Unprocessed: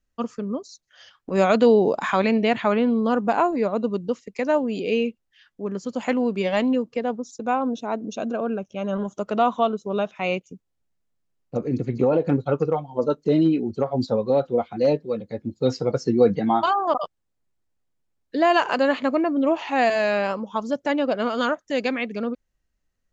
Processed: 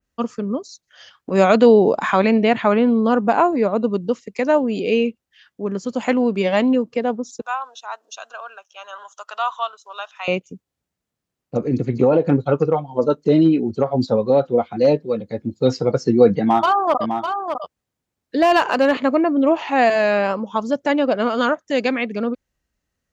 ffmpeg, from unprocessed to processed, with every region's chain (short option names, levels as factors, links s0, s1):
-filter_complex "[0:a]asettb=1/sr,asplit=3[s0][s1][s2];[s0]atrim=end=7.414[s3];[s1]atrim=start=7.41:end=10.28,asetpts=PTS-STARTPTS,afade=t=in:d=0.004:c=qsin,afade=t=out:st=2.866:d=0.004:c=qsin,highpass=f=970:w=0.5412,highpass=f=970:w=1.3066,equalizer=f=2200:t=o:w=0.21:g=-13[s4];[s2]atrim=start=10.276[s5];[s3][s4]acrossfade=d=0.004:c1=hsin:c2=qsin[s6];[s6][s5]acrossfade=d=0.004:c1=qsin:c2=hsin,asettb=1/sr,asplit=3[s7][s8][s9];[s7]atrim=end=16.404[s10];[s8]atrim=start=16.4:end=18.97,asetpts=PTS-STARTPTS,afade=t=in:d=0.004:c=qsin,afade=t=out:st=2.566:d=0.004:c=qsin,aeval=exprs='clip(val(0),-1,0.2)':c=same,aecho=1:1:604:0.447,atrim=end_sample=113337[s11];[s9]atrim=start=18.966[s12];[s10][s11]acrossfade=d=0.004:c1=hsin:c2=qsin[s13];[s13][s12]acrossfade=d=0.004:c1=qsin:c2=hsin,highpass=53,adynamicequalizer=threshold=0.0158:dfrequency=2600:dqfactor=0.7:tfrequency=2600:tqfactor=0.7:attack=5:release=100:ratio=0.375:range=2:mode=cutabove:tftype=highshelf,volume=1.68"